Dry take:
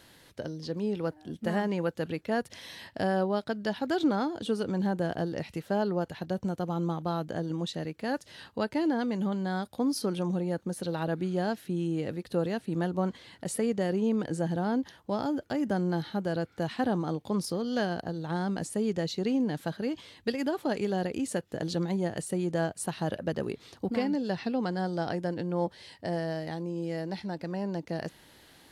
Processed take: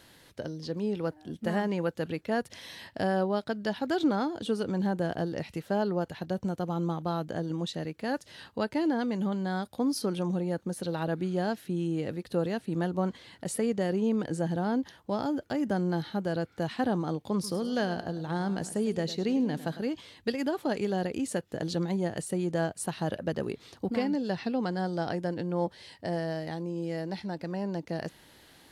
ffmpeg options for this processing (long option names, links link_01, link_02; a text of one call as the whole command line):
ffmpeg -i in.wav -filter_complex "[0:a]asettb=1/sr,asplit=3[link_01][link_02][link_03];[link_01]atrim=end=17.334[link_04];[link_02]atrim=start=17.33:end=19.87,asetpts=PTS-STARTPTS,afade=type=in:duration=0.004:curve=qsin,afade=type=out:start_time=2.536:duration=0.004:curve=qsin,aecho=1:1:103|206|309|412:0.188|0.0791|0.0332|0.014,atrim=end_sample=112014[link_05];[link_03]atrim=start=19.866[link_06];[link_04][link_05]acrossfade=duration=0.004:curve1=hsin:curve2=qsin[link_07];[link_07][link_06]acrossfade=duration=0.004:curve1=qsin:curve2=hsin" out.wav